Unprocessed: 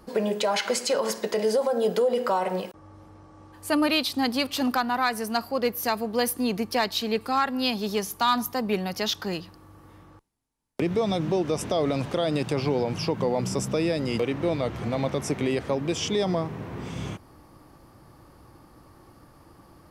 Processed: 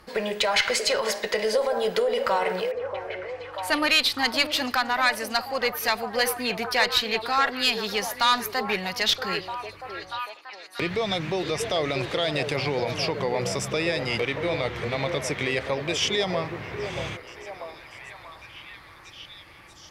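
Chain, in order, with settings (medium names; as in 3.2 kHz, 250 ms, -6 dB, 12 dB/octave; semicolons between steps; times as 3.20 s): graphic EQ 250/2000/4000 Hz -7/+10/+6 dB; valve stage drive 10 dB, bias 0.3; repeats whose band climbs or falls 635 ms, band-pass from 450 Hz, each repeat 0.7 oct, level -4.5 dB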